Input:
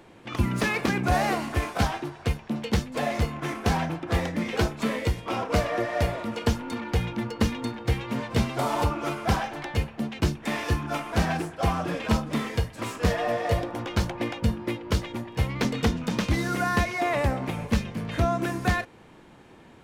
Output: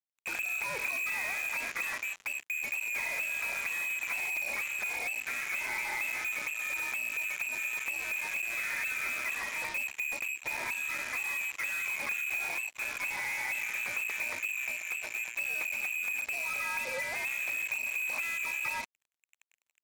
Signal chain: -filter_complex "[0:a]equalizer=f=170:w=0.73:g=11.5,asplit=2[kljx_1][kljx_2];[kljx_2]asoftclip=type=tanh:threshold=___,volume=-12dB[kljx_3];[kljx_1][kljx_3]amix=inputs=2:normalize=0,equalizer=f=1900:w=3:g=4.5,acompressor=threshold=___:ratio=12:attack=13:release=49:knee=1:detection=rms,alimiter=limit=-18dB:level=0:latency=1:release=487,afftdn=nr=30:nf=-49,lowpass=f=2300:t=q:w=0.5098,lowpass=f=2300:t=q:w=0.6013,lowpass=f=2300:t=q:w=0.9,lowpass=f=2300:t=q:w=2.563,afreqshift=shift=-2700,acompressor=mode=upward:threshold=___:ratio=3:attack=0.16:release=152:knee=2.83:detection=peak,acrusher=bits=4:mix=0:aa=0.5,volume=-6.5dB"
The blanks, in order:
-15.5dB, -26dB, -37dB